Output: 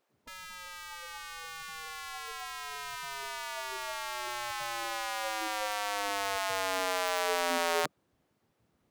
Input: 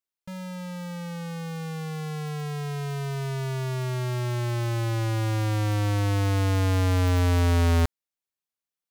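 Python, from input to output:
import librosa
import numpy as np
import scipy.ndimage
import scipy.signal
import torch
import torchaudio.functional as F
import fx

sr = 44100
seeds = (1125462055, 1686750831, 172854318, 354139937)

y = fx.dmg_noise_colour(x, sr, seeds[0], colour='brown', level_db=-64.0)
y = fx.spec_gate(y, sr, threshold_db=-15, keep='weak')
y = y * librosa.db_to_amplitude(1.5)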